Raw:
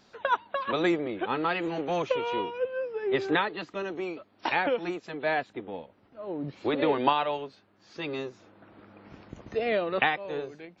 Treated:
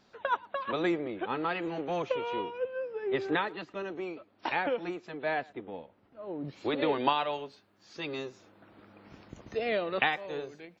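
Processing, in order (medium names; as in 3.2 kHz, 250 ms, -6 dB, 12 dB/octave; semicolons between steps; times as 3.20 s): treble shelf 4.6 kHz -5 dB, from 6.45 s +8.5 dB; speakerphone echo 110 ms, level -24 dB; trim -3.5 dB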